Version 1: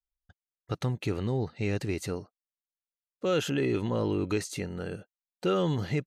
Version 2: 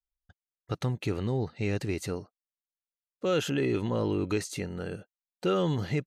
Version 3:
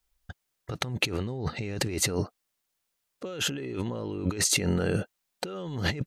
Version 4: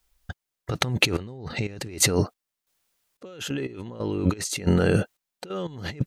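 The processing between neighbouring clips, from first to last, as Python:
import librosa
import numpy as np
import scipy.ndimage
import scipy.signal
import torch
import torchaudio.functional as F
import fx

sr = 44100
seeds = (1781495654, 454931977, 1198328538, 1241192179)

y1 = x
y2 = fx.over_compress(y1, sr, threshold_db=-39.0, ratio=-1.0)
y2 = y2 * librosa.db_to_amplitude(8.0)
y3 = fx.step_gate(y2, sr, bpm=90, pattern='xx..xxx..x..', floor_db=-12.0, edge_ms=4.5)
y3 = y3 * librosa.db_to_amplitude(6.5)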